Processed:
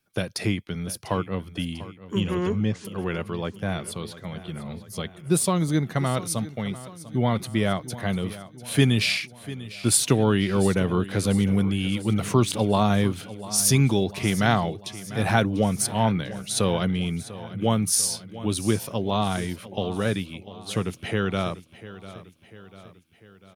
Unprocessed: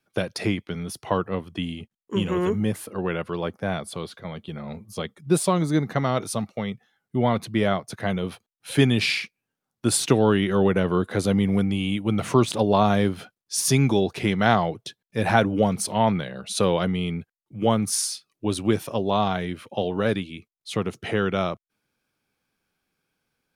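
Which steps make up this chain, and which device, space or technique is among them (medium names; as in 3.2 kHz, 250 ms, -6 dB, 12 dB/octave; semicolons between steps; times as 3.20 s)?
2.20–2.85 s: steep low-pass 6.7 kHz 36 dB/octave; smiley-face EQ (bass shelf 120 Hz +5 dB; peaking EQ 590 Hz -4 dB 2.8 oct; treble shelf 8.7 kHz +7 dB); feedback delay 696 ms, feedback 54%, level -16 dB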